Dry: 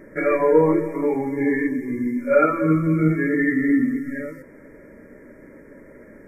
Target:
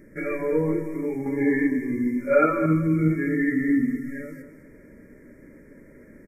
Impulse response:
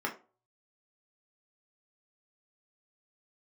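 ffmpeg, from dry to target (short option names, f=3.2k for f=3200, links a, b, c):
-af "asetnsamples=n=441:p=0,asendcmd='1.26 equalizer g -3;2.66 equalizer g -10.5',equalizer=f=860:w=0.61:g=-15,aecho=1:1:208:0.251"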